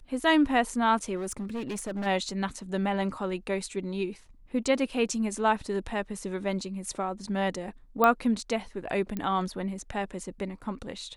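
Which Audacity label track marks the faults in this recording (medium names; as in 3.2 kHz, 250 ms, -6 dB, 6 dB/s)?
1.150000	2.070000	clipped -29.5 dBFS
8.040000	8.040000	pop -10 dBFS
9.170000	9.170000	pop -19 dBFS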